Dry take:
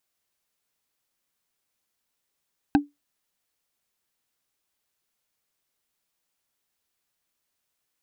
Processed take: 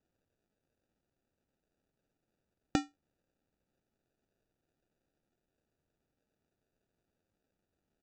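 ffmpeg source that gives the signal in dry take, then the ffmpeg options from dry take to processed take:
-f lavfi -i "aevalsrc='0.282*pow(10,-3*t/0.18)*sin(2*PI*289*t)+0.168*pow(10,-3*t/0.053)*sin(2*PI*796.8*t)+0.1*pow(10,-3*t/0.024)*sin(2*PI*1561.8*t)+0.0596*pow(10,-3*t/0.013)*sin(2*PI*2581.6*t)+0.0355*pow(10,-3*t/0.008)*sin(2*PI*3855.3*t)':d=0.45:s=44100"
-af "lowshelf=f=330:g=-8,acompressor=threshold=-24dB:ratio=3,aresample=16000,acrusher=samples=15:mix=1:aa=0.000001,aresample=44100"

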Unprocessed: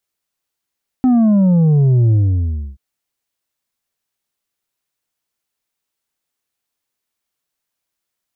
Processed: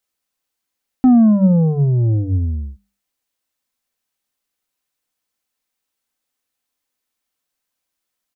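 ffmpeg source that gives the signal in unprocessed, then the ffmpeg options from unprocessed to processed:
-f lavfi -i "aevalsrc='0.335*clip((1.73-t)/0.65,0,1)*tanh(1.78*sin(2*PI*260*1.73/log(65/260)*(exp(log(65/260)*t/1.73)-1)))/tanh(1.78)':d=1.73:s=44100"
-af "bandreject=f=50:t=h:w=6,bandreject=f=100:t=h:w=6,bandreject=f=150:t=h:w=6,bandreject=f=200:t=h:w=6,aecho=1:1:3.9:0.31"

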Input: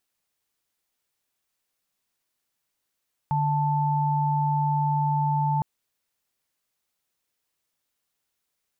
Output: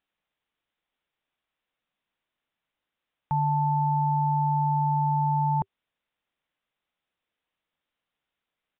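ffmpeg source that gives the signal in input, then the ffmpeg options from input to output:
-f lavfi -i "aevalsrc='0.0668*(sin(2*PI*146.83*t)+sin(2*PI*880*t))':d=2.31:s=44100"
-af "equalizer=f=100:t=o:w=0.45:g=-6.5,bandreject=f=390:w=12,aresample=8000,aresample=44100"

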